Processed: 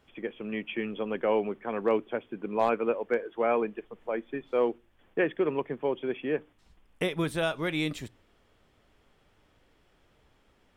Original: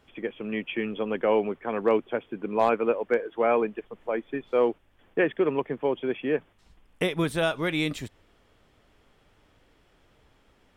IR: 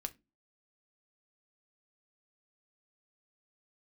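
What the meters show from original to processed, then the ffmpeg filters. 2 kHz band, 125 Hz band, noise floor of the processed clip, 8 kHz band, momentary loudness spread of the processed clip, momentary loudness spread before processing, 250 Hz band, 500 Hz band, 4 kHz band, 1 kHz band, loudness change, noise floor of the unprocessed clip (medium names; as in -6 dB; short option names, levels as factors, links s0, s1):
-3.0 dB, -3.0 dB, -66 dBFS, no reading, 9 LU, 9 LU, -3.0 dB, -3.5 dB, -3.0 dB, -3.0 dB, -3.0 dB, -63 dBFS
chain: -filter_complex "[0:a]asplit=2[s0][s1];[1:a]atrim=start_sample=2205[s2];[s1][s2]afir=irnorm=-1:irlink=0,volume=0.398[s3];[s0][s3]amix=inputs=2:normalize=0,volume=0.531"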